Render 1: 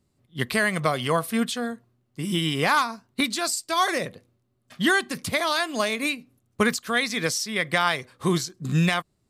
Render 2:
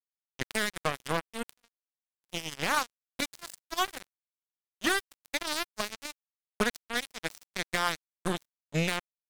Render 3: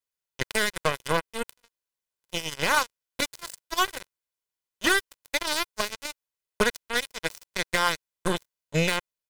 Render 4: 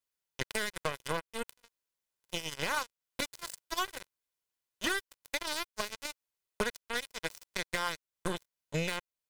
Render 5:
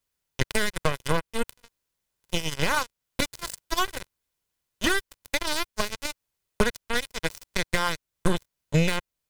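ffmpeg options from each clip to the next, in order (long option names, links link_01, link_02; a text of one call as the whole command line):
ffmpeg -i in.wav -af "acrusher=bits=2:mix=0:aa=0.5,volume=-6.5dB" out.wav
ffmpeg -i in.wav -af "aecho=1:1:2:0.38,volume=4.5dB" out.wav
ffmpeg -i in.wav -af "acompressor=threshold=-36dB:ratio=2" out.wav
ffmpeg -i in.wav -af "lowshelf=frequency=190:gain=11,volume=7dB" out.wav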